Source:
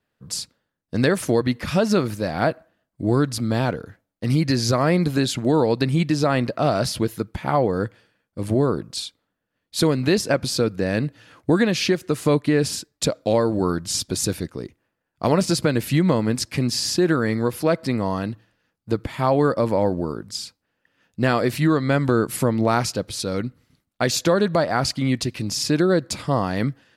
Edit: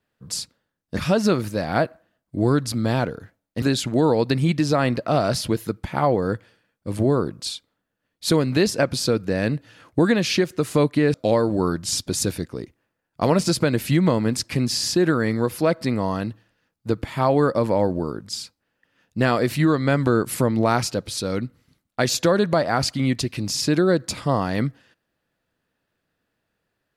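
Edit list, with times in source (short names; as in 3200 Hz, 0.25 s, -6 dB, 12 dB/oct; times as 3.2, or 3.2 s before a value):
0.97–1.63 cut
4.28–5.13 cut
12.65–13.16 cut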